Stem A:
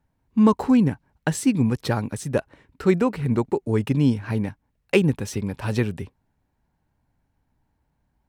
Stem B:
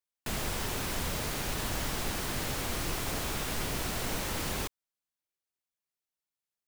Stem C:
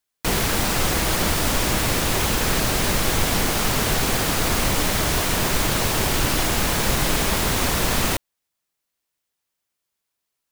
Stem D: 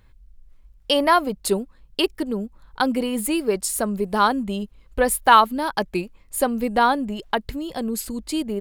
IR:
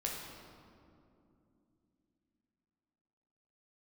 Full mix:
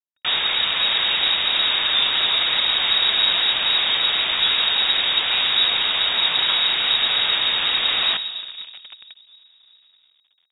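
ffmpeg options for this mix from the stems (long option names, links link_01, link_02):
-filter_complex "[0:a]flanger=delay=17:depth=5:speed=2,adelay=1550,volume=-5.5dB[link_01];[1:a]volume=0.5dB[link_02];[2:a]volume=-1.5dB,asplit=2[link_03][link_04];[link_04]volume=-8.5dB[link_05];[3:a]volume=-18.5dB[link_06];[4:a]atrim=start_sample=2205[link_07];[link_05][link_07]afir=irnorm=-1:irlink=0[link_08];[link_01][link_02][link_03][link_06][link_08]amix=inputs=5:normalize=0,acrusher=bits=7:dc=4:mix=0:aa=0.000001,lowpass=frequency=3200:width_type=q:width=0.5098,lowpass=frequency=3200:width_type=q:width=0.6013,lowpass=frequency=3200:width_type=q:width=0.9,lowpass=frequency=3200:width_type=q:width=2.563,afreqshift=-3800"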